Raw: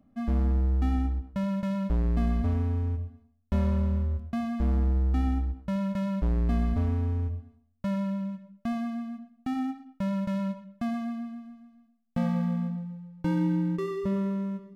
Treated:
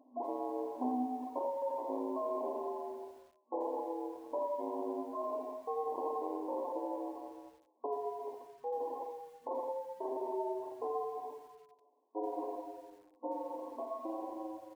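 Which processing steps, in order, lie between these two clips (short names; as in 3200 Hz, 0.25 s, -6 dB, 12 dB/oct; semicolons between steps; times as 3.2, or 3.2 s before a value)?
gliding pitch shift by -10.5 st starting unshifted; tilt +4.5 dB/oct; in parallel at +1 dB: limiter -34 dBFS, peak gain reduction 10.5 dB; on the sum: speakerphone echo 0.21 s, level -6 dB; decimation with a swept rate 11×, swing 160% 1.7 Hz; FFT band-pass 240–1100 Hz; lo-fi delay 85 ms, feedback 55%, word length 10-bit, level -12 dB; gain +2.5 dB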